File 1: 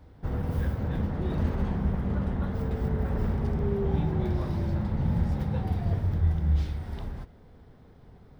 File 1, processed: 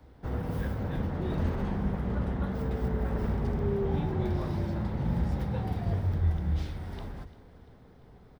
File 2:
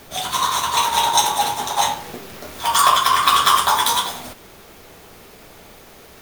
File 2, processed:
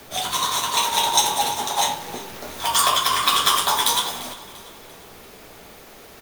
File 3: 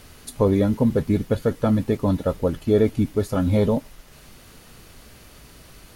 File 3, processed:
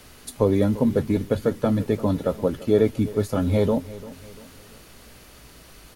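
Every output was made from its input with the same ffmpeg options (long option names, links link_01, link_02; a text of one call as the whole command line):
ffmpeg -i in.wav -filter_complex "[0:a]acrossover=split=190|850|1700[link_01][link_02][link_03][link_04];[link_01]flanger=delay=16:depth=6.5:speed=0.38[link_05];[link_03]acompressor=threshold=-35dB:ratio=6[link_06];[link_05][link_02][link_06][link_04]amix=inputs=4:normalize=0,aecho=1:1:344|688|1032|1376:0.133|0.0573|0.0247|0.0106" out.wav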